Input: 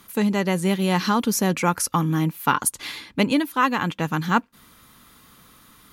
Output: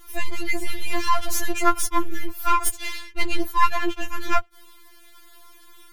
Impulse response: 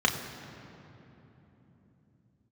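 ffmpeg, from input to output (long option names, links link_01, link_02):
-af "aeval=exprs='if(lt(val(0),0),0.251*val(0),val(0))':channel_layout=same,acontrast=27,afftfilt=real='re*4*eq(mod(b,16),0)':imag='im*4*eq(mod(b,16),0)':win_size=2048:overlap=0.75"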